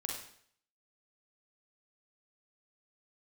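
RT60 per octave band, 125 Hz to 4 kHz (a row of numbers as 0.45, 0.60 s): 0.60, 0.60, 0.60, 0.60, 0.60, 0.60 s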